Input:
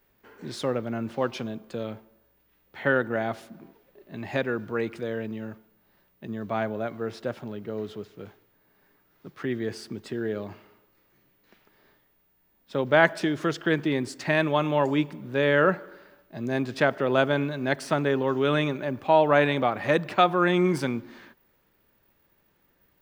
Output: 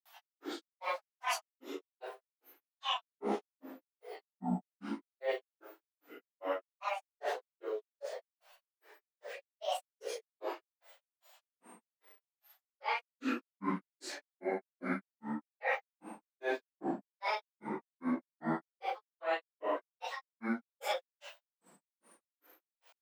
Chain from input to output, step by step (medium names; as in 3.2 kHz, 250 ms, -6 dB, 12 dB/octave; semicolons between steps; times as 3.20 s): phase randomisation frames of 200 ms; elliptic high-pass 340 Hz, stop band 40 dB; reverse; compression 12:1, threshold -38 dBFS, peak gain reduction 23 dB; reverse; granulator 217 ms, grains 2.5 per s, pitch spread up and down by 12 st; trim +9 dB